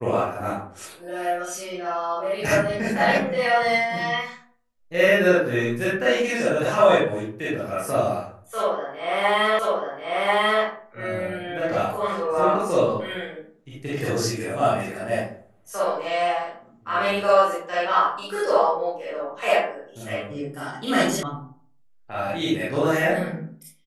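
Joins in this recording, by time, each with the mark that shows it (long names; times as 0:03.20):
0:09.59: the same again, the last 1.04 s
0:21.23: cut off before it has died away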